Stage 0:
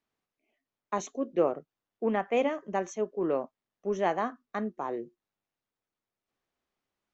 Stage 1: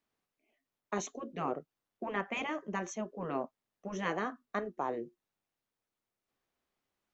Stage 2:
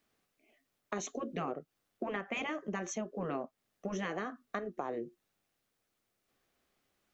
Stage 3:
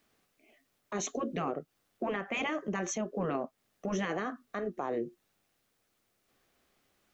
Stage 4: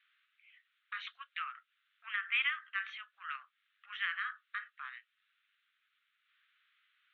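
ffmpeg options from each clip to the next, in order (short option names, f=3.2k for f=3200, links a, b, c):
-af "afftfilt=real='re*lt(hypot(re,im),0.2)':imag='im*lt(hypot(re,im),0.2)':win_size=1024:overlap=0.75"
-af "alimiter=level_in=0.5dB:limit=-24dB:level=0:latency=1:release=156,volume=-0.5dB,equalizer=f=950:w=5.5:g=-6.5,acompressor=threshold=-43dB:ratio=4,volume=8dB"
-af "alimiter=level_in=6dB:limit=-24dB:level=0:latency=1:release=13,volume=-6dB,volume=5.5dB"
-af "asuperpass=centerf=2200:order=12:qfactor=0.91,volume=4.5dB"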